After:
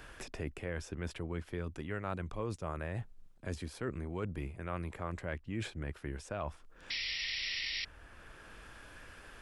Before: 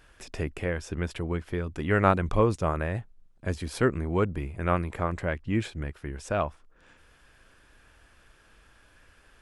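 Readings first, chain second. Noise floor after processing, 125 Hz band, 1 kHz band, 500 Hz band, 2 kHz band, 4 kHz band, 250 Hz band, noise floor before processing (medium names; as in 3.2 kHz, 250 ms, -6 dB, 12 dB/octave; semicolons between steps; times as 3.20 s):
-57 dBFS, -10.5 dB, -14.0 dB, -13.0 dB, -6.5 dB, +6.0 dB, -11.5 dB, -60 dBFS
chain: reverse; compression 4:1, threshold -36 dBFS, peak gain reduction 17.5 dB; reverse; painted sound noise, 6.90–7.85 s, 1.8–5.7 kHz -34 dBFS; three bands compressed up and down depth 40%; trim -1 dB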